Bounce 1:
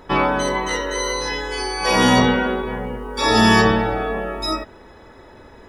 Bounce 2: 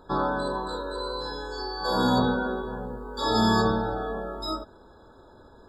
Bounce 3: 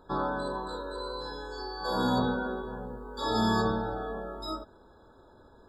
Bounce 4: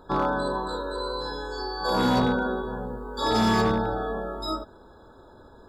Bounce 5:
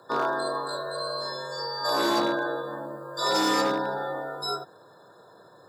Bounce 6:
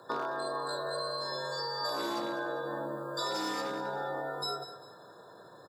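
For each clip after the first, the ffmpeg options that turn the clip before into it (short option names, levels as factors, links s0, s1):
-af "afftfilt=real='re*eq(mod(floor(b*sr/1024/1700),2),0)':imag='im*eq(mod(floor(b*sr/1024/1700),2),0)':win_size=1024:overlap=0.75,volume=0.422"
-af "equalizer=f=5500:t=o:w=0.71:g=-3,volume=0.596"
-af "asoftclip=type=hard:threshold=0.0708,volume=2"
-af "afreqshift=93,bass=f=250:g=-11,treble=f=4000:g=7,volume=0.891"
-af "acompressor=threshold=0.0251:ratio=6,aecho=1:1:198|396|594:0.224|0.0784|0.0274"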